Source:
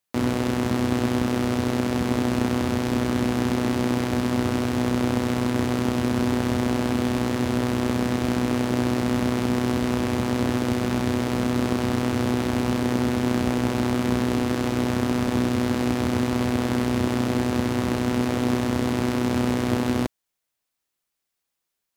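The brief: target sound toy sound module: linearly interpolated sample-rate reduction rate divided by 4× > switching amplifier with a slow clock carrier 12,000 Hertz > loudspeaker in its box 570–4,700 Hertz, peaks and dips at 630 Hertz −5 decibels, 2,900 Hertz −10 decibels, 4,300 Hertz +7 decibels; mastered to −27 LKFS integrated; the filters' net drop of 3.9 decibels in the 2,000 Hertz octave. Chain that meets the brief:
parametric band 2,000 Hz −3.5 dB
linearly interpolated sample-rate reduction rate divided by 4×
switching amplifier with a slow clock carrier 12,000 Hz
loudspeaker in its box 570–4,700 Hz, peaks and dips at 630 Hz −5 dB, 2,900 Hz −10 dB, 4,300 Hz +7 dB
level +6.5 dB

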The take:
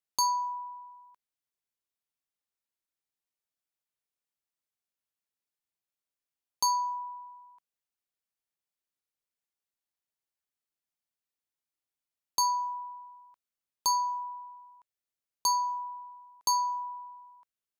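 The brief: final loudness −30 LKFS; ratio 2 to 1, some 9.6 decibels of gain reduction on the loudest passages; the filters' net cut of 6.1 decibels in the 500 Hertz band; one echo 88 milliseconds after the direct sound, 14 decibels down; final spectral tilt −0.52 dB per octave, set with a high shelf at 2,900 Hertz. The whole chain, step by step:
parametric band 500 Hz −8 dB
high-shelf EQ 2,900 Hz −6 dB
downward compressor 2 to 1, threshold −45 dBFS
single-tap delay 88 ms −14 dB
level +13.5 dB

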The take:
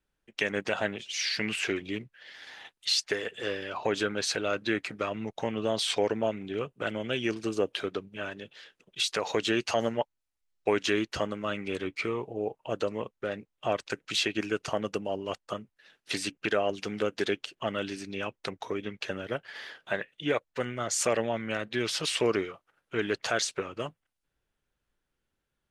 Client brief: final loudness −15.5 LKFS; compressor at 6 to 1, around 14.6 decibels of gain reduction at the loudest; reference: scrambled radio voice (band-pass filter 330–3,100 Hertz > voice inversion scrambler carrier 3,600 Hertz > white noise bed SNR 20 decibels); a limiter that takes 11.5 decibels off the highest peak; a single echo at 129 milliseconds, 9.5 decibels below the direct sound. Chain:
downward compressor 6 to 1, threshold −39 dBFS
brickwall limiter −32 dBFS
band-pass filter 330–3,100 Hz
single-tap delay 129 ms −9.5 dB
voice inversion scrambler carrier 3,600 Hz
white noise bed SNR 20 dB
level +28.5 dB

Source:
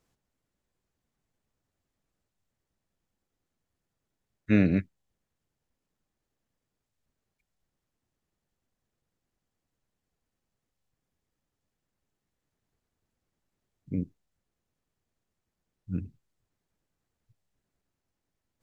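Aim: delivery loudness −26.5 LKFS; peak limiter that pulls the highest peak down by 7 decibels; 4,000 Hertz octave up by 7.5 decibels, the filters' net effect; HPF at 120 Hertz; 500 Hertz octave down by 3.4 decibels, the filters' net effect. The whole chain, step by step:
high-pass filter 120 Hz
parametric band 500 Hz −4.5 dB
parametric band 4,000 Hz +8.5 dB
level +7 dB
brickwall limiter −12.5 dBFS

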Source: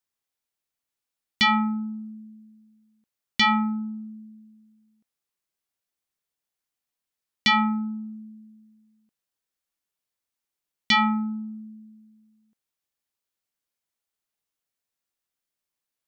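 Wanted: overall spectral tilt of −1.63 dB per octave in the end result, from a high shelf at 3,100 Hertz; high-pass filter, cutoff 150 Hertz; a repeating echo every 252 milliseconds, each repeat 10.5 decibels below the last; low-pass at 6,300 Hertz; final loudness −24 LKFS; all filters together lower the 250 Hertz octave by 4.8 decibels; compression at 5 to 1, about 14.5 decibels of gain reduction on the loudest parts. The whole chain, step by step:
high-pass filter 150 Hz
low-pass filter 6,300 Hz
parametric band 250 Hz −4.5 dB
high-shelf EQ 3,100 Hz −8 dB
downward compressor 5 to 1, threshold −36 dBFS
repeating echo 252 ms, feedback 30%, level −10.5 dB
level +15 dB

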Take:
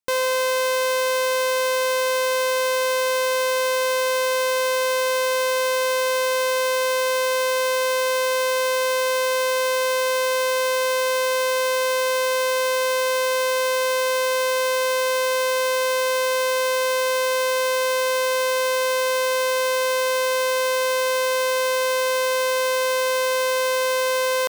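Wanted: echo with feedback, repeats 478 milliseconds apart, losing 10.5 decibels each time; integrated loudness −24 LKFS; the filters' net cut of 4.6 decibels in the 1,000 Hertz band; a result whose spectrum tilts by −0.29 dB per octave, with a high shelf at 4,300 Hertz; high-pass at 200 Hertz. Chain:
high-pass filter 200 Hz
parametric band 1,000 Hz −5 dB
high-shelf EQ 4,300 Hz +6 dB
repeating echo 478 ms, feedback 30%, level −10.5 dB
level −3.5 dB

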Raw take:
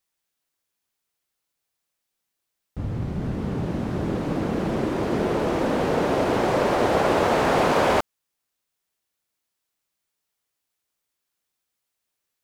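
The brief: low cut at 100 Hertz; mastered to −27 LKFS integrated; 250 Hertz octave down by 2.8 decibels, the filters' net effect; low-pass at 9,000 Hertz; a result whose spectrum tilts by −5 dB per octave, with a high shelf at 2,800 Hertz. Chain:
high-pass filter 100 Hz
low-pass filter 9,000 Hz
parametric band 250 Hz −3.5 dB
high-shelf EQ 2,800 Hz −5 dB
level −2.5 dB

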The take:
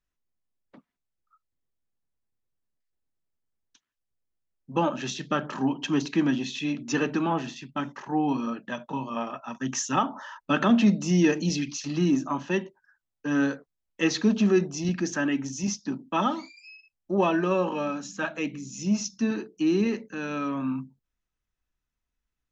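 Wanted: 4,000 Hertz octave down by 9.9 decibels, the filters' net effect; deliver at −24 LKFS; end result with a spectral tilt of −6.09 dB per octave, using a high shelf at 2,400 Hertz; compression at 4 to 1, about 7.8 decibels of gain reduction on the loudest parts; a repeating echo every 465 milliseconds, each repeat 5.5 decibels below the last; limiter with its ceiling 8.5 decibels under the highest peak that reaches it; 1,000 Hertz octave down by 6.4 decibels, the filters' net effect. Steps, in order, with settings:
parametric band 1,000 Hz −6.5 dB
high-shelf EQ 2,400 Hz −8 dB
parametric band 4,000 Hz −5.5 dB
downward compressor 4 to 1, threshold −26 dBFS
brickwall limiter −25.5 dBFS
repeating echo 465 ms, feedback 53%, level −5.5 dB
level +10 dB

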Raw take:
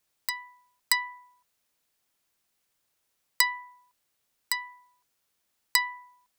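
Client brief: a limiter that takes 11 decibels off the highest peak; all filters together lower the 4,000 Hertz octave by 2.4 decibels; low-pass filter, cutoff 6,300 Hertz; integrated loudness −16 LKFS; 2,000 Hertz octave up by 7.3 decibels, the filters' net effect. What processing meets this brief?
low-pass filter 6,300 Hz
parametric band 2,000 Hz +8 dB
parametric band 4,000 Hz −3.5 dB
level +13.5 dB
brickwall limiter −4 dBFS

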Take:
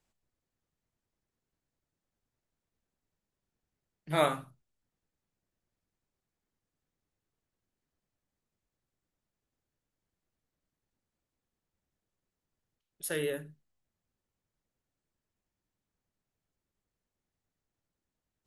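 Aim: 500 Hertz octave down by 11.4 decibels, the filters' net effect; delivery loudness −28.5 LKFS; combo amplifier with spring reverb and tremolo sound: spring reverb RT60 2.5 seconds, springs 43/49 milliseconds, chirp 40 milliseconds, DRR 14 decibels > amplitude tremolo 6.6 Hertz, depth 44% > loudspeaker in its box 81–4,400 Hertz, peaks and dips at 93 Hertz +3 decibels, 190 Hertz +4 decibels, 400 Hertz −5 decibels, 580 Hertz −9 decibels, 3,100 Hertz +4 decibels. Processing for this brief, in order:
parametric band 500 Hz −7 dB
spring reverb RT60 2.5 s, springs 43/49 ms, chirp 40 ms, DRR 14 dB
amplitude tremolo 6.6 Hz, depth 44%
loudspeaker in its box 81–4,400 Hz, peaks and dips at 93 Hz +3 dB, 190 Hz +4 dB, 400 Hz −5 dB, 580 Hz −9 dB, 3,100 Hz +4 dB
level +10 dB

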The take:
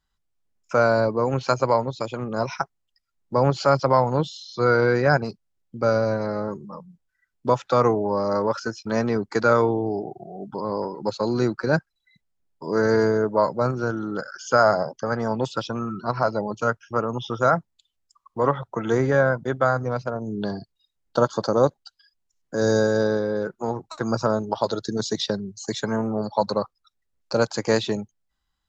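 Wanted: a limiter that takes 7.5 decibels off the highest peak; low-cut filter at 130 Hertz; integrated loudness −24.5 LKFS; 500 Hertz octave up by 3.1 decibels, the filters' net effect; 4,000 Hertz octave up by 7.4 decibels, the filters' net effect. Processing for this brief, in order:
high-pass filter 130 Hz
parametric band 500 Hz +3.5 dB
parametric band 4,000 Hz +8.5 dB
level −1 dB
brickwall limiter −11.5 dBFS

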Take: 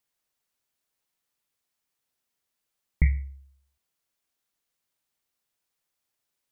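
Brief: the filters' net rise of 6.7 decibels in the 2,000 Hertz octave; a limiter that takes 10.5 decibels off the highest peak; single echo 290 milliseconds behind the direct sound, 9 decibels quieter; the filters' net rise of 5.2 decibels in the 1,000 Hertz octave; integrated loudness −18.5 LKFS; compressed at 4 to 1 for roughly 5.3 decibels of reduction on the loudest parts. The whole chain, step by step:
parametric band 1,000 Hz +5.5 dB
parametric band 2,000 Hz +6 dB
downward compressor 4 to 1, threshold −22 dBFS
brickwall limiter −23 dBFS
single-tap delay 290 ms −9 dB
level +19.5 dB

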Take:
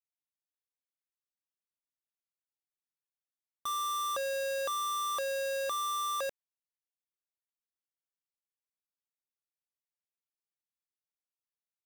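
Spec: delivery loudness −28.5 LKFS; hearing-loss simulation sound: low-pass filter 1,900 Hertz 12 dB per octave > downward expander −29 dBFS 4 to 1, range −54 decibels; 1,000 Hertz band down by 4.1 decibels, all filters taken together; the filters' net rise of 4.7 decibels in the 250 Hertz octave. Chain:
low-pass filter 1,900 Hz 12 dB per octave
parametric band 250 Hz +6.5 dB
parametric band 1,000 Hz −4.5 dB
downward expander −29 dBFS 4 to 1, range −54 dB
level +23 dB

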